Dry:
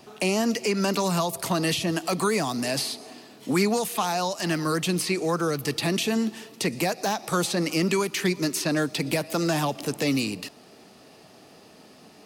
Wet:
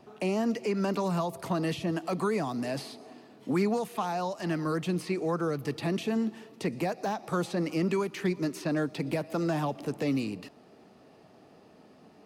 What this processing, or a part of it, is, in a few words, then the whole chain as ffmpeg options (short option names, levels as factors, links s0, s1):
through cloth: -af "highshelf=f=2600:g=-14.5,volume=0.668"